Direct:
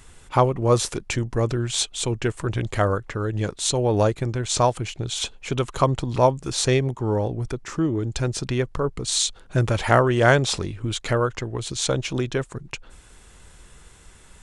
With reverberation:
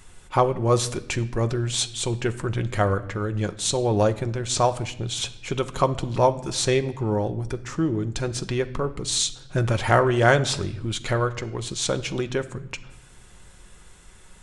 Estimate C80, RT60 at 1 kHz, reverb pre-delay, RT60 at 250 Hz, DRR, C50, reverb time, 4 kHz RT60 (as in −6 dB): 18.5 dB, 0.75 s, 5 ms, 1.3 s, 8.5 dB, 16.0 dB, 0.80 s, 0.70 s